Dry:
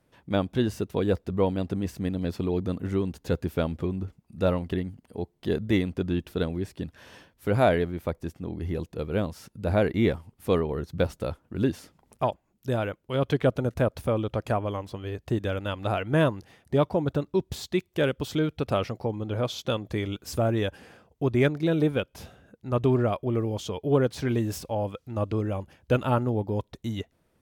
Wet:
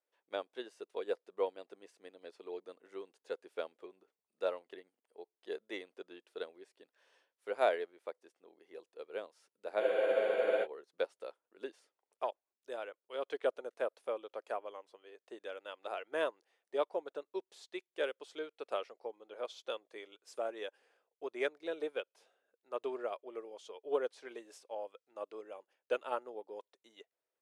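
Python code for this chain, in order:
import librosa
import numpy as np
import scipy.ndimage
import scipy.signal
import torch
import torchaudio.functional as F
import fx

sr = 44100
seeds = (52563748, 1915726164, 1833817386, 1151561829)

y = scipy.signal.sosfilt(scipy.signal.ellip(3, 1.0, 60, [430.0, 9800.0], 'bandpass', fs=sr, output='sos'), x)
y = fx.spec_freeze(y, sr, seeds[0], at_s=9.82, hold_s=0.83)
y = fx.upward_expand(y, sr, threshold_db=-45.0, expansion=1.5)
y = y * 10.0 ** (-6.5 / 20.0)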